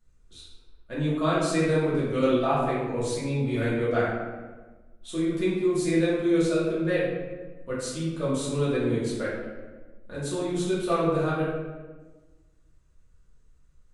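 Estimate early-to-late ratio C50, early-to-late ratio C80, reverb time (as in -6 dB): -0.5 dB, 3.0 dB, 1.3 s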